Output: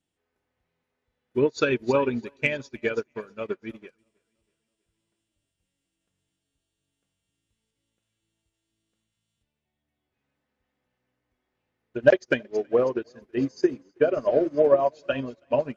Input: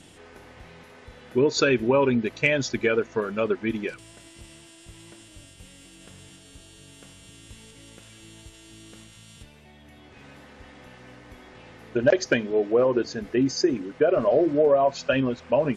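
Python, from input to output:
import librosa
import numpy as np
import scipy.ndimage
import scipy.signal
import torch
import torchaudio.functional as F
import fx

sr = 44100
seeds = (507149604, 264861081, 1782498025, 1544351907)

y = fx.echo_feedback(x, sr, ms=324, feedback_pct=57, wet_db=-15.5)
y = fx.upward_expand(y, sr, threshold_db=-39.0, expansion=2.5)
y = y * 10.0 ** (4.5 / 20.0)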